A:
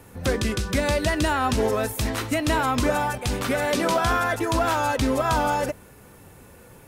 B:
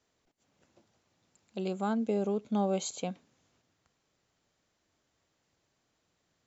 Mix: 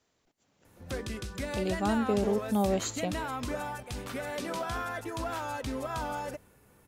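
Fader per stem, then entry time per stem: −12.5, +2.0 decibels; 0.65, 0.00 seconds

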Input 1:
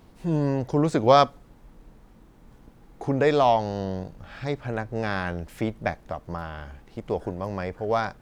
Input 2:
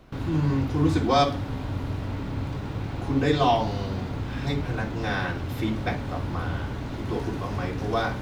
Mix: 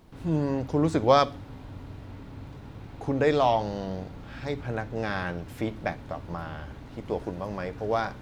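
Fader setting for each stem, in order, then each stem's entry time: −3.0, −12.0 decibels; 0.00, 0.00 seconds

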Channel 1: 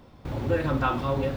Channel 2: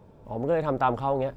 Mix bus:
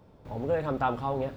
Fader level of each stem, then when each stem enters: −12.0, −4.5 decibels; 0.00, 0.00 seconds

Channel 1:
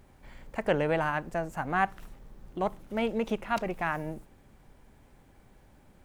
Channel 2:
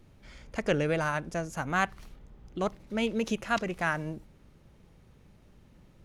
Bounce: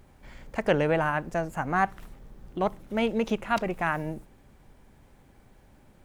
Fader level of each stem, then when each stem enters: +1.0, −9.0 decibels; 0.00, 0.00 seconds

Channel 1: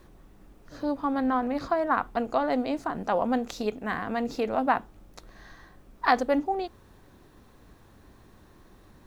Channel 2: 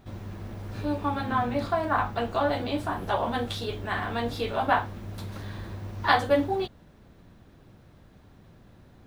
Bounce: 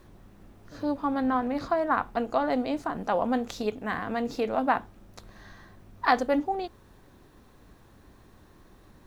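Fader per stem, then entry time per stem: −0.5, −17.5 decibels; 0.00, 0.00 seconds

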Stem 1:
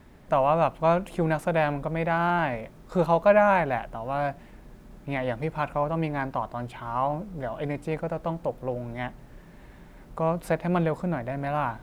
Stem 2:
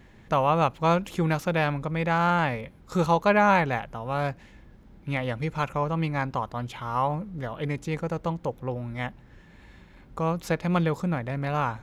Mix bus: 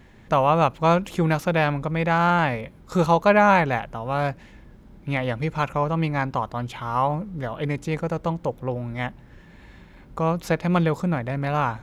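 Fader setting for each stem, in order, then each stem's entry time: −11.0, +2.0 decibels; 0.00, 0.00 seconds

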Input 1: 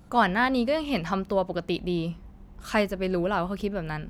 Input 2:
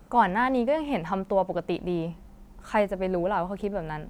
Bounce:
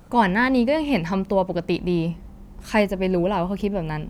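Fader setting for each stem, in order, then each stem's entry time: +1.0, +2.0 decibels; 0.00, 0.00 seconds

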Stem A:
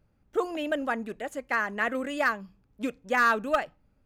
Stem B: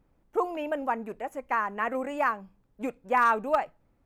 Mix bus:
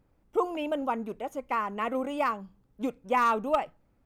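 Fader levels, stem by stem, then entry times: −8.0, −1.0 decibels; 0.00, 0.00 seconds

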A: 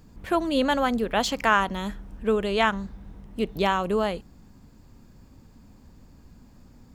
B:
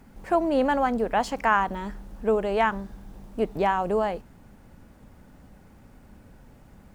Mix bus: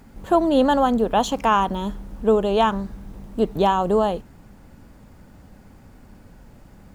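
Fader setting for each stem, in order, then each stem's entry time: −2.5, +3.0 decibels; 0.00, 0.00 seconds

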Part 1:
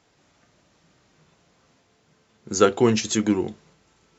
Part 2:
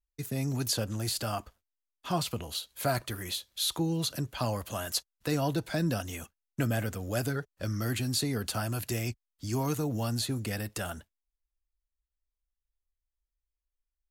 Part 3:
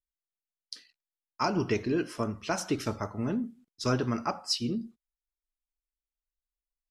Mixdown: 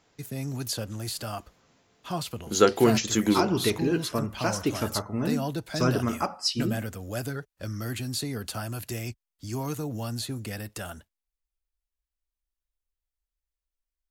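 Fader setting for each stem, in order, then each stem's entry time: −2.0, −1.5, +2.5 decibels; 0.00, 0.00, 1.95 seconds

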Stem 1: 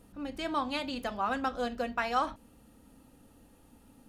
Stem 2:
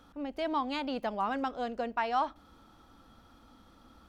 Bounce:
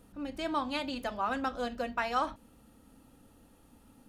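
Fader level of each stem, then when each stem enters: −1.0, −15.0 decibels; 0.00, 0.00 seconds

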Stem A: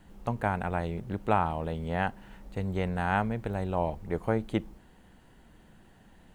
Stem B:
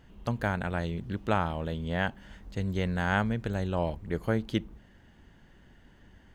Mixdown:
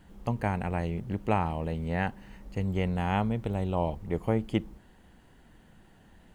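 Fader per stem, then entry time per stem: −1.0, −8.0 decibels; 0.00, 0.00 seconds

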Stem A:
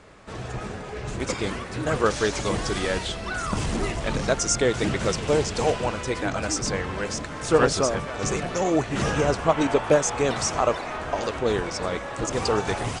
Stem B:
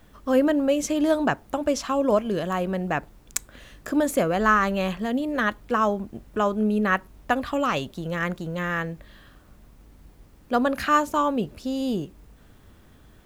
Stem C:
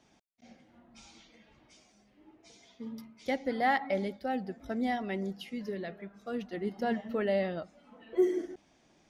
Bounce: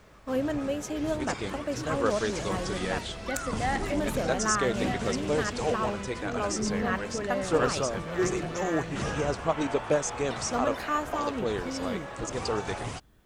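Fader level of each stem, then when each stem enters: −6.5, −9.0, −2.5 decibels; 0.00, 0.00, 0.00 seconds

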